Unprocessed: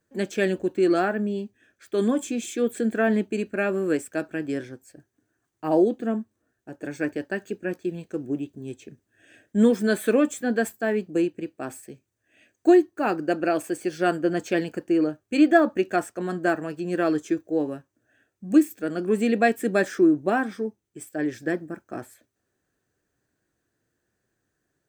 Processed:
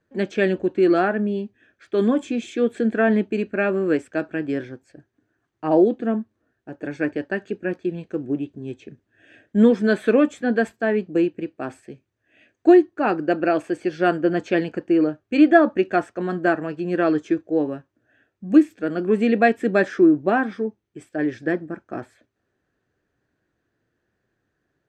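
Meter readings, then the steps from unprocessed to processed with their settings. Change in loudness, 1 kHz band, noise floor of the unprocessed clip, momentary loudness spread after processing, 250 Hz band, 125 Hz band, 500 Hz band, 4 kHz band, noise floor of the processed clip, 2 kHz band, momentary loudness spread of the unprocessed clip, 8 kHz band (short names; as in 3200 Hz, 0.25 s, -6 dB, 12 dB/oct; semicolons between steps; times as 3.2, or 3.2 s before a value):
+3.5 dB, +3.5 dB, -78 dBFS, 15 LU, +3.5 dB, +3.5 dB, +3.5 dB, +0.5 dB, -76 dBFS, +3.5 dB, 15 LU, under -10 dB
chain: LPF 3600 Hz 12 dB/oct; gain +3.5 dB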